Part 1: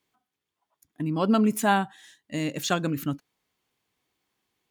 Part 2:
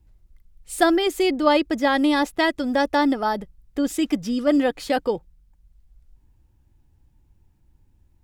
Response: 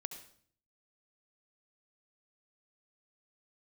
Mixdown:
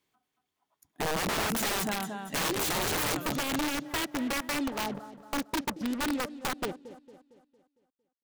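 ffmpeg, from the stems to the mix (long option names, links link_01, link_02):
-filter_complex "[0:a]alimiter=limit=-17dB:level=0:latency=1:release=108,volume=-1.5dB,asplit=3[link_01][link_02][link_03];[link_02]volume=-23.5dB[link_04];[link_03]volume=-6dB[link_05];[1:a]afwtdn=0.0631,acrossover=split=300|1000[link_06][link_07][link_08];[link_06]acompressor=threshold=-30dB:ratio=4[link_09];[link_07]acompressor=threshold=-33dB:ratio=4[link_10];[link_08]acompressor=threshold=-33dB:ratio=4[link_11];[link_09][link_10][link_11]amix=inputs=3:normalize=0,acrusher=bits=5:mix=0:aa=0.5,adelay=1550,volume=-4dB,asplit=3[link_12][link_13][link_14];[link_13]volume=-21dB[link_15];[link_14]volume=-14dB[link_16];[2:a]atrim=start_sample=2205[link_17];[link_04][link_15]amix=inputs=2:normalize=0[link_18];[link_18][link_17]afir=irnorm=-1:irlink=0[link_19];[link_05][link_16]amix=inputs=2:normalize=0,aecho=0:1:228|456|684|912|1140|1368|1596:1|0.47|0.221|0.104|0.0488|0.0229|0.0108[link_20];[link_01][link_12][link_19][link_20]amix=inputs=4:normalize=0,aeval=exprs='(mod(16.8*val(0)+1,2)-1)/16.8':channel_layout=same"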